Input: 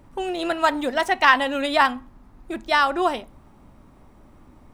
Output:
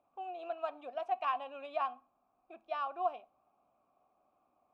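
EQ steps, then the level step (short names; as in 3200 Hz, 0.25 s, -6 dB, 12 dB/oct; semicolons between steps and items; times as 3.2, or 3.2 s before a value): vowel filter a; high shelf 5500 Hz -5.5 dB; -8.0 dB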